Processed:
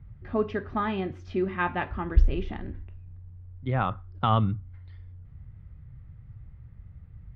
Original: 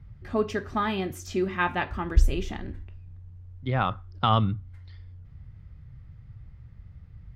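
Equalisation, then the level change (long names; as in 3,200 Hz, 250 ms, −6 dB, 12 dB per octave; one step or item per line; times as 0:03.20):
low-pass filter 7,000 Hz
high-frequency loss of the air 310 metres
0.0 dB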